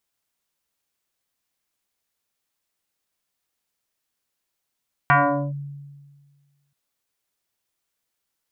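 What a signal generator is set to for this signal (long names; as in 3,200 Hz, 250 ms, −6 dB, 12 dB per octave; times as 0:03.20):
two-operator FM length 1.63 s, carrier 142 Hz, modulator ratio 3.02, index 4.1, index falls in 0.43 s linear, decay 1.64 s, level −11 dB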